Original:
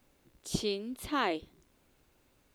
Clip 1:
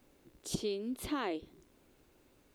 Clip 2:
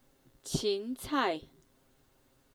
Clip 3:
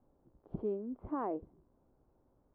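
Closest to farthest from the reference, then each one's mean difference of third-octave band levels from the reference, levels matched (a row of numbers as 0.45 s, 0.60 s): 2, 1, 3; 1.0 dB, 3.0 dB, 10.5 dB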